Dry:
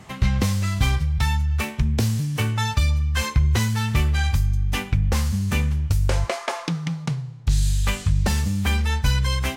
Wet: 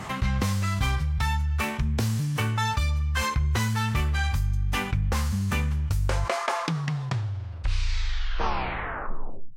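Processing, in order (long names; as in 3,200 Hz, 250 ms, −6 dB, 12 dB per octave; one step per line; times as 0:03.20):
turntable brake at the end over 2.93 s
parametric band 1,200 Hz +6 dB 1.4 octaves
envelope flattener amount 50%
level −8 dB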